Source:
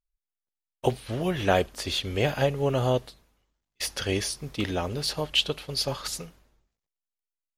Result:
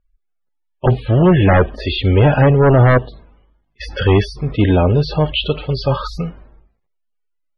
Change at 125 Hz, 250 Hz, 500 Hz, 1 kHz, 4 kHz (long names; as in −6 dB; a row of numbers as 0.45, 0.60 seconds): +18.0, +15.5, +12.0, +11.5, +3.5 decibels